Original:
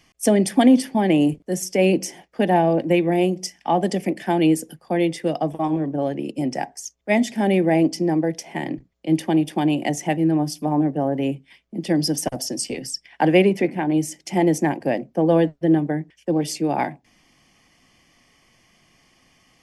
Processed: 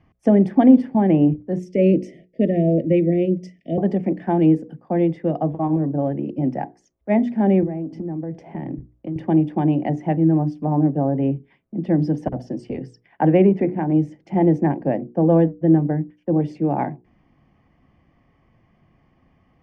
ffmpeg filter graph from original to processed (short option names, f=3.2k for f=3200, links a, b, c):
-filter_complex "[0:a]asettb=1/sr,asplit=3[a][b][c];[a]atrim=end=1.594[d];[b]atrim=start=1.59:end=3.78,asetpts=PTS-STARTPTS,afade=t=in:d=0.004:c=qsin,afade=t=out:st=2.186:d=0.004:c=qsin,asuperstop=centerf=1100:order=20:qfactor=0.93,highshelf=f=5.1k:g=8[e];[c]atrim=start=3.776[f];[d][e]acrossfade=d=0.004:c1=hsin:c2=qsin[g];[g][f]acrossfade=d=0.004:c1=qsin:c2=hsin,asettb=1/sr,asplit=3[h][i][j];[h]atrim=end=7.634[k];[i]atrim=start=7.63:end=9.16,asetpts=PTS-STARTPTS,afade=t=in:d=0.004:c=qsin,afade=t=out:st=1.526:d=0.004:c=qsin,lowshelf=f=410:g=5.5,acompressor=threshold=-26dB:ratio=16:attack=3.2:release=140:knee=1:detection=peak[l];[j]atrim=start=9.156[m];[k][l]acrossfade=d=0.004:c1=hsin:c2=qsin[n];[n][m]acrossfade=d=0.004:c1=qsin:c2=hsin,lowpass=1.3k,equalizer=f=78:t=o:w=2.9:g=10,bandreject=f=60:t=h:w=6,bandreject=f=120:t=h:w=6,bandreject=f=180:t=h:w=6,bandreject=f=240:t=h:w=6,bandreject=f=300:t=h:w=6,bandreject=f=360:t=h:w=6,bandreject=f=420:t=h:w=6,bandreject=f=480:t=h:w=6,volume=-1dB"